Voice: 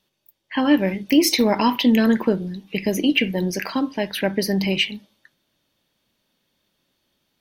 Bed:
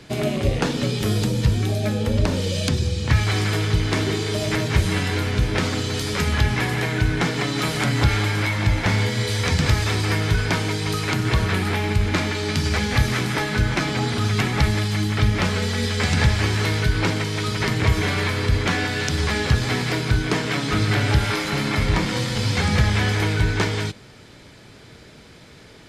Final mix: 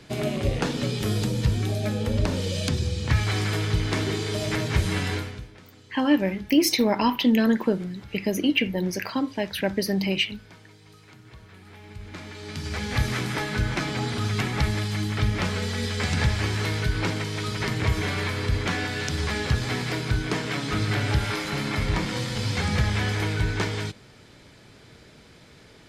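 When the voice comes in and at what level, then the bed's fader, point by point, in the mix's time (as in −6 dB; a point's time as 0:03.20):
5.40 s, −3.5 dB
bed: 0:05.14 −4 dB
0:05.57 −27.5 dB
0:11.52 −27.5 dB
0:13.01 −5 dB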